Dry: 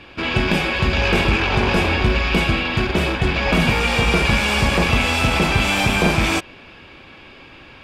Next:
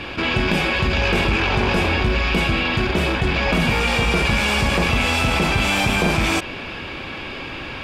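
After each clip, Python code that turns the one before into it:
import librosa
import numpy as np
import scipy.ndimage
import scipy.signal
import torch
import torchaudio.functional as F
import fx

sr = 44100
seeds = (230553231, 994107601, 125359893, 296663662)

y = fx.env_flatten(x, sr, amount_pct=50)
y = F.gain(torch.from_numpy(y), -3.0).numpy()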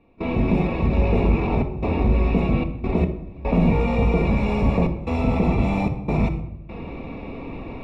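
y = fx.step_gate(x, sr, bpm=74, pattern='.xxxxxxx.xxxx.x.', floor_db=-24.0, edge_ms=4.5)
y = np.convolve(y, np.full(28, 1.0 / 28))[:len(y)]
y = fx.room_shoebox(y, sr, seeds[0], volume_m3=2400.0, walls='furnished', distance_m=1.7)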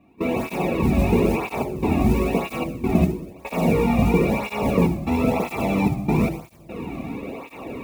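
y = fx.mod_noise(x, sr, seeds[1], snr_db=28)
y = fx.flanger_cancel(y, sr, hz=1.0, depth_ms=2.3)
y = F.gain(torch.from_numpy(y), 5.0).numpy()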